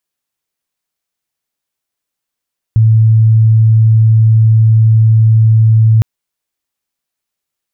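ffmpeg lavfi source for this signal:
-f lavfi -i "aevalsrc='0.631*sin(2*PI*111*t)':d=3.26:s=44100"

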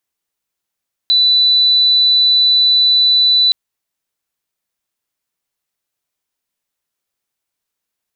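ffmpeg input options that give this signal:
-f lavfi -i "aevalsrc='0.398*sin(2*PI*3980*t)':d=2.42:s=44100"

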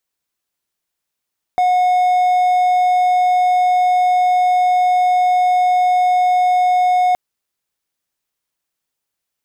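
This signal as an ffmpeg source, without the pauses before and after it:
-f lavfi -i "aevalsrc='0.355*(1-4*abs(mod(727*t+0.25,1)-0.5))':d=5.57:s=44100"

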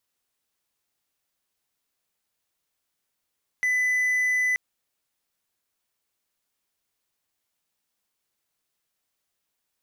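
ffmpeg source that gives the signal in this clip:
-f lavfi -i "aevalsrc='0.119*(1-4*abs(mod(2000*t+0.25,1)-0.5))':d=0.93:s=44100"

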